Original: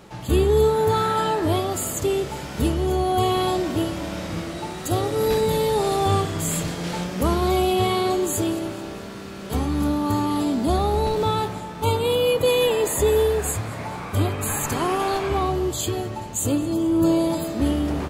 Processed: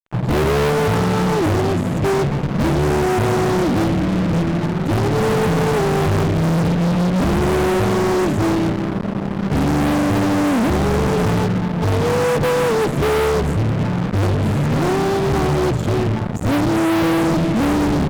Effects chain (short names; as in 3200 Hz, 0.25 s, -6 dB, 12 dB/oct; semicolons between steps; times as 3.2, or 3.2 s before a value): band-pass 160 Hz, Q 1.6; added harmonics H 4 -28 dB, 5 -38 dB, 7 -19 dB, 8 -30 dB, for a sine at -15.5 dBFS; fuzz box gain 53 dB, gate -54 dBFS; gain -2 dB